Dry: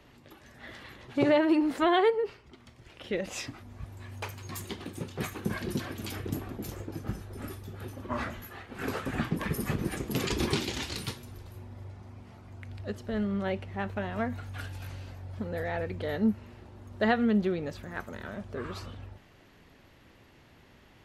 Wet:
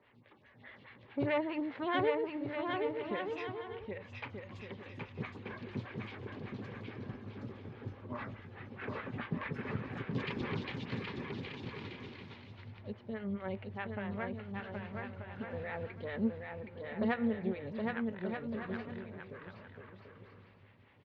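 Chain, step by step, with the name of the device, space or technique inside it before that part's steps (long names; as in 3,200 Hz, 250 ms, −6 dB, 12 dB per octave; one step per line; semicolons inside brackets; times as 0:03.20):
vibe pedal into a guitar amplifier (phaser with staggered stages 4.8 Hz; tube saturation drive 18 dB, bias 0.55; loudspeaker in its box 92–3,700 Hz, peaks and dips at 110 Hz +9 dB, 330 Hz −7 dB, 690 Hz −6 dB, 1,300 Hz −3 dB, 2,200 Hz +4 dB)
bouncing-ball delay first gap 770 ms, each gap 0.6×, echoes 5
0:06.99–0:08.28: dynamic equaliser 2,300 Hz, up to −4 dB, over −58 dBFS, Q 1.1
level −2 dB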